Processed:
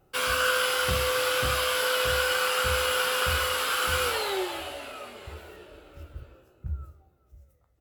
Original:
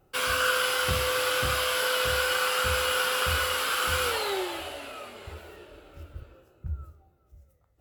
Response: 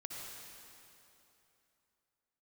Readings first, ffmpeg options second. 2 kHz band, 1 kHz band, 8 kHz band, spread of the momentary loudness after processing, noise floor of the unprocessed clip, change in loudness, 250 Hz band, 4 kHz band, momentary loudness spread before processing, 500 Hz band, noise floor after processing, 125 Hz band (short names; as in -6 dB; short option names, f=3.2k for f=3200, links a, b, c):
0.0 dB, +0.5 dB, +0.5 dB, 16 LU, -65 dBFS, +0.5 dB, +0.5 dB, +0.5 dB, 16 LU, +1.5 dB, -65 dBFS, 0.0 dB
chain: -filter_complex "[0:a]asplit=2[a][b];[b]adelay=16,volume=-11.5dB[c];[a][c]amix=inputs=2:normalize=0"